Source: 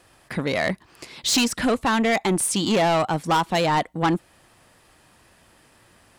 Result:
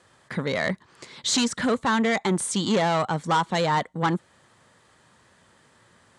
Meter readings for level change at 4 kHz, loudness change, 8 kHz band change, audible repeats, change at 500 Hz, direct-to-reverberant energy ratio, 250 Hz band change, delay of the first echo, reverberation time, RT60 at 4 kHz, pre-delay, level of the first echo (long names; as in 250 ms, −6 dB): −3.0 dB, −2.5 dB, −3.5 dB, no echo audible, −2.5 dB, no reverb audible, −2.0 dB, no echo audible, no reverb audible, no reverb audible, no reverb audible, no echo audible